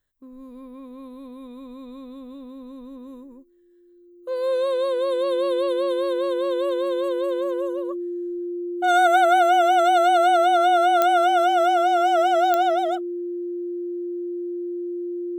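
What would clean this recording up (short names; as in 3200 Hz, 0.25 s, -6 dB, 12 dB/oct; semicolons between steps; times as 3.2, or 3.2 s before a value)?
de-click; notch 350 Hz, Q 30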